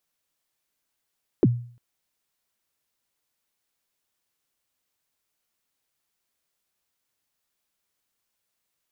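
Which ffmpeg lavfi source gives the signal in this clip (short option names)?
-f lavfi -i "aevalsrc='0.282*pow(10,-3*t/0.48)*sin(2*PI*(450*0.036/log(120/450)*(exp(log(120/450)*min(t,0.036)/0.036)-1)+120*max(t-0.036,0)))':d=0.35:s=44100"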